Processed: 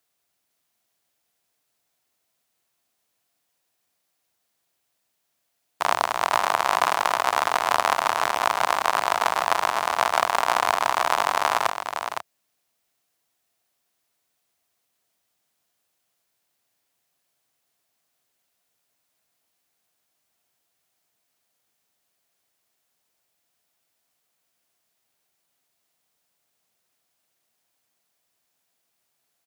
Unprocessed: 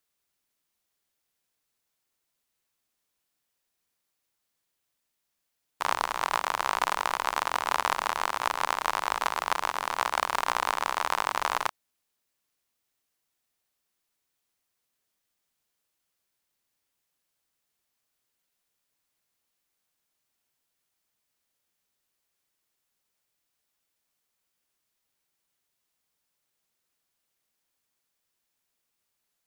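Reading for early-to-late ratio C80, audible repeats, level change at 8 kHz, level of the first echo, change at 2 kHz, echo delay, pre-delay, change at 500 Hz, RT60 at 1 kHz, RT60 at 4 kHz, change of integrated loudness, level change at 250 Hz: no reverb audible, 1, +5.5 dB, −7.0 dB, +5.5 dB, 511 ms, no reverb audible, +9.5 dB, no reverb audible, no reverb audible, +6.0 dB, +5.5 dB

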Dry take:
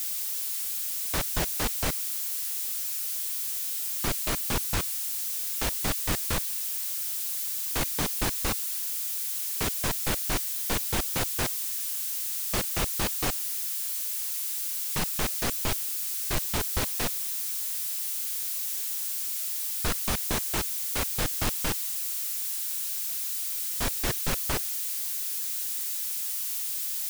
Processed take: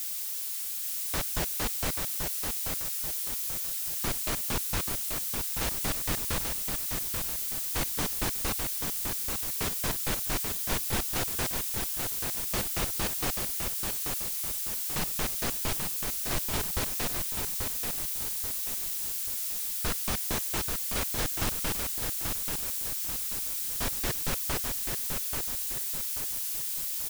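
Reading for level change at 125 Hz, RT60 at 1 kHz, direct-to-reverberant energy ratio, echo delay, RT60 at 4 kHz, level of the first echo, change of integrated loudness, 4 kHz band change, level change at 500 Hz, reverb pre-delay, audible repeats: −1.5 dB, no reverb audible, no reverb audible, 835 ms, no reverb audible, −5.0 dB, −1.5 dB, −1.5 dB, −1.5 dB, no reverb audible, 5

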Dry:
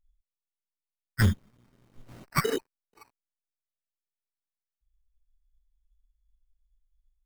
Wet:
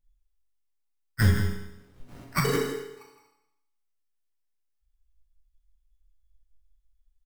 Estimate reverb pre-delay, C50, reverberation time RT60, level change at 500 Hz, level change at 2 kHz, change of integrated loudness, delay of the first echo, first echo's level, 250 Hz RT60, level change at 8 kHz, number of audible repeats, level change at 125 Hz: 7 ms, 2.5 dB, 0.90 s, +3.0 dB, +2.0 dB, +1.5 dB, 164 ms, −10.5 dB, 0.85 s, +2.5 dB, 1, +3.0 dB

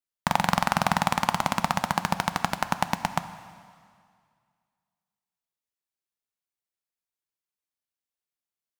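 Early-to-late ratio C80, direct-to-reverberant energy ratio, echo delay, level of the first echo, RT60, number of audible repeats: 13.5 dB, 11.0 dB, no echo audible, no echo audible, 2.1 s, no echo audible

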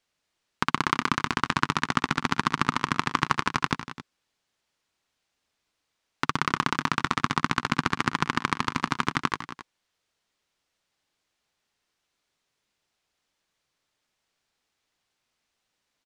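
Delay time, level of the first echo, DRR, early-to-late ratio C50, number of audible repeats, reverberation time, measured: 67 ms, −16.5 dB, no reverb audible, no reverb audible, 3, no reverb audible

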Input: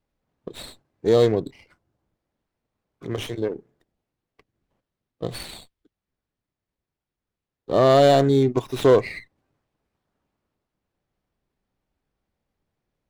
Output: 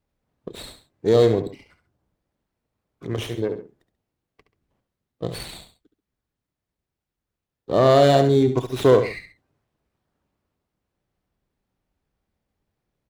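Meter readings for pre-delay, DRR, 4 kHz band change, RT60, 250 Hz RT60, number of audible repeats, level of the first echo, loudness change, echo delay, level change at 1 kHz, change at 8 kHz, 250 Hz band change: no reverb audible, no reverb audible, +0.5 dB, no reverb audible, no reverb audible, 2, −10.0 dB, +0.5 dB, 70 ms, +0.5 dB, +0.5 dB, +1.0 dB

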